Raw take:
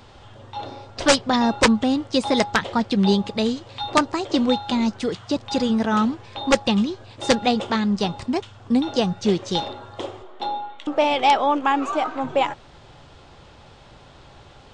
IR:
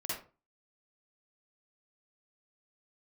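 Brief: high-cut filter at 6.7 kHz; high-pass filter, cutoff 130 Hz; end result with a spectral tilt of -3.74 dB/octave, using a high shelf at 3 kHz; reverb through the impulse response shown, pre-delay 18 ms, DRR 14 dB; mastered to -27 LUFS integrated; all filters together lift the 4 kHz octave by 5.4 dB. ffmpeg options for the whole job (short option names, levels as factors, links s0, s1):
-filter_complex "[0:a]highpass=130,lowpass=6700,highshelf=f=3000:g=3.5,equalizer=f=4000:t=o:g=4.5,asplit=2[s0][s1];[1:a]atrim=start_sample=2205,adelay=18[s2];[s1][s2]afir=irnorm=-1:irlink=0,volume=0.15[s3];[s0][s3]amix=inputs=2:normalize=0,volume=0.473"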